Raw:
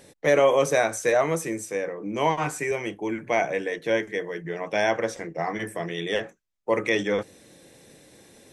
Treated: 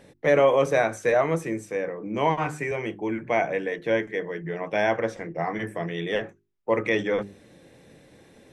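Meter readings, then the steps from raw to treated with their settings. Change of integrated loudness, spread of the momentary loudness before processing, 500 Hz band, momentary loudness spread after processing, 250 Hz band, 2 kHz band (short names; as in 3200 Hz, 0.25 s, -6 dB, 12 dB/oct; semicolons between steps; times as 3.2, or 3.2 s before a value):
0.0 dB, 10 LU, 0.0 dB, 10 LU, +0.5 dB, -0.5 dB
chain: tone controls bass +4 dB, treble -11 dB; notches 50/100/150/200/250/300/350/400 Hz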